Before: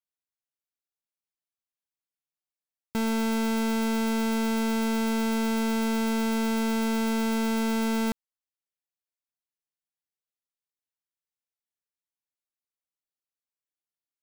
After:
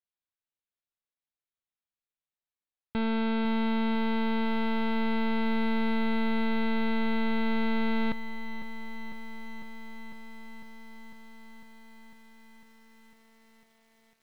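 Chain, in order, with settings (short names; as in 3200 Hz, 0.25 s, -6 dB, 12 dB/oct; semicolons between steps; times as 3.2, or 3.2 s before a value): elliptic low-pass 4000 Hz, stop band 40 dB; low shelf 65 Hz +6.5 dB; lo-fi delay 0.501 s, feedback 80%, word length 9-bit, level -12 dB; gain -1.5 dB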